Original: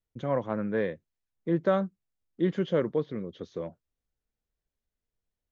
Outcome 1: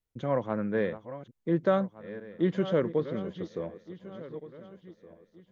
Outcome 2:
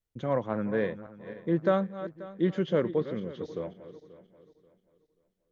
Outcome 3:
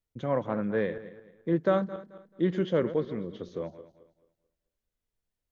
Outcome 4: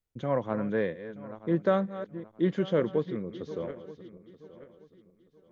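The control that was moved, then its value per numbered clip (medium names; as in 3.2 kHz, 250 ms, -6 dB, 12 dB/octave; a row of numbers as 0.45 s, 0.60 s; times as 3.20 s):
backward echo that repeats, time: 734 ms, 267 ms, 109 ms, 464 ms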